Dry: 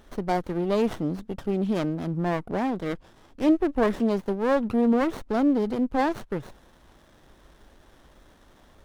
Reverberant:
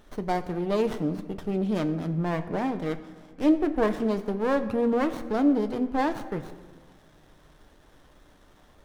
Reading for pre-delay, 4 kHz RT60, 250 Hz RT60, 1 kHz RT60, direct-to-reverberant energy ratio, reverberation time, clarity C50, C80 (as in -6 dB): 7 ms, 1.0 s, 2.1 s, 1.5 s, 8.0 dB, 1.6 s, 13.0 dB, 14.0 dB